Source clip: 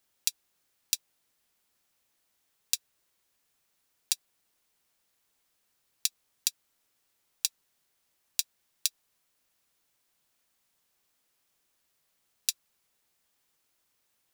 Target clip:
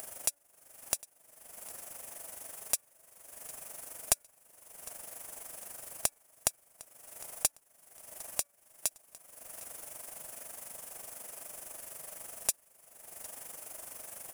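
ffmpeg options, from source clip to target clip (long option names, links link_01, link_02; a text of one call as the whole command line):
ffmpeg -i in.wav -af "tremolo=f=24:d=0.667,acompressor=mode=upward:threshold=-31dB:ratio=2.5,bandreject=frequency=287.1:width_type=h:width=4,bandreject=frequency=574.2:width_type=h:width=4,bandreject=frequency=861.3:width_type=h:width=4,bandreject=frequency=1148.4:width_type=h:width=4,bandreject=frequency=1435.5:width_type=h:width=4,bandreject=frequency=1722.6:width_type=h:width=4,bandreject=frequency=2009.7:width_type=h:width=4,bandreject=frequency=2296.8:width_type=h:width=4,aeval=exprs='clip(val(0),-1,0.0668)':channel_layout=same,equalizer=frequency=630:width_type=o:width=0.67:gain=12,equalizer=frequency=4000:width_type=o:width=0.67:gain=-11,equalizer=frequency=10000:width_type=o:width=0.67:gain=10,aecho=1:1:756|1512:0.0944|0.0293,volume=3dB" out.wav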